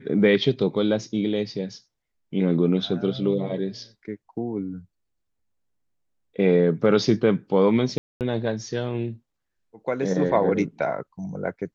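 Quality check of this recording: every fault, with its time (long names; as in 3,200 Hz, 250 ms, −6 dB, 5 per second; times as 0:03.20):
0:07.98–0:08.21: drop-out 228 ms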